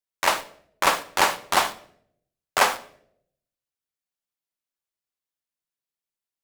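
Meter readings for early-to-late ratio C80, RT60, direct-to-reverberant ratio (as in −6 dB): 18.5 dB, 0.65 s, 9.5 dB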